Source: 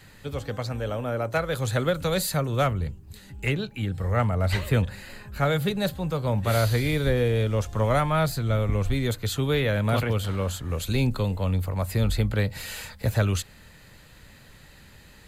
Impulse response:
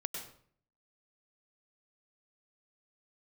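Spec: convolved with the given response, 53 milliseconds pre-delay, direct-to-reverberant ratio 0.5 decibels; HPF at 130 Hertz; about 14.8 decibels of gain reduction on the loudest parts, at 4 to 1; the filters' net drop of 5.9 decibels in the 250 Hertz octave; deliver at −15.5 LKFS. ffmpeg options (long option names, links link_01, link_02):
-filter_complex "[0:a]highpass=130,equalizer=frequency=250:width_type=o:gain=-7.5,acompressor=threshold=-39dB:ratio=4,asplit=2[link_01][link_02];[1:a]atrim=start_sample=2205,adelay=53[link_03];[link_02][link_03]afir=irnorm=-1:irlink=0,volume=-1dB[link_04];[link_01][link_04]amix=inputs=2:normalize=0,volume=22.5dB"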